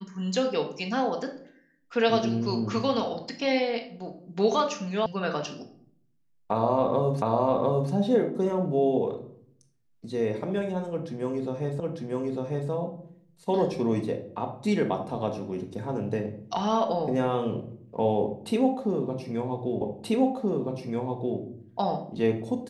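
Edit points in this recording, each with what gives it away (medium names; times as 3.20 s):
5.06 s: sound stops dead
7.22 s: repeat of the last 0.7 s
11.80 s: repeat of the last 0.9 s
19.81 s: repeat of the last 1.58 s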